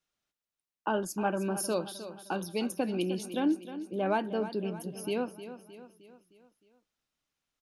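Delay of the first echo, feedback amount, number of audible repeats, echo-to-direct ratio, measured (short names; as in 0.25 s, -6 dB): 0.309 s, 51%, 4, -11.0 dB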